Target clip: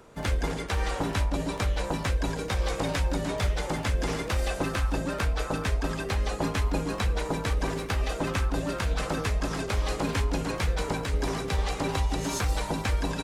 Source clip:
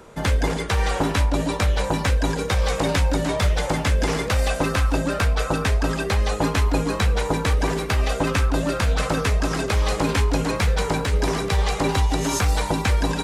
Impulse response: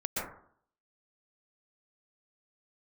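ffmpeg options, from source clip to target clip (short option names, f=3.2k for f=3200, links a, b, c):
-filter_complex "[0:a]asplit=3[a][b][c];[b]asetrate=29433,aresample=44100,atempo=1.49831,volume=-9dB[d];[c]asetrate=58866,aresample=44100,atempo=0.749154,volume=-17dB[e];[a][d][e]amix=inputs=3:normalize=0,volume=-7.5dB"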